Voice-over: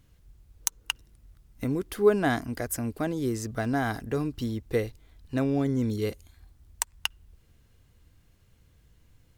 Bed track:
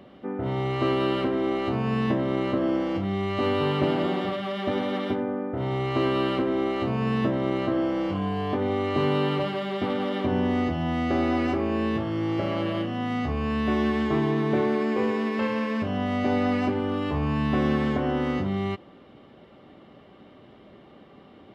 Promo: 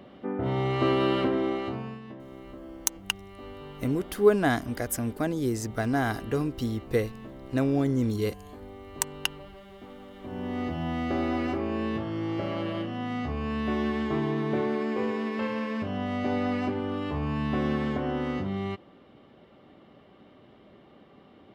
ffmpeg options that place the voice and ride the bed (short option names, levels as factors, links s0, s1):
-filter_complex "[0:a]adelay=2200,volume=1.12[s0];[1:a]volume=5.62,afade=t=out:st=1.3:d=0.7:silence=0.112202,afade=t=in:st=10.18:d=0.61:silence=0.177828[s1];[s0][s1]amix=inputs=2:normalize=0"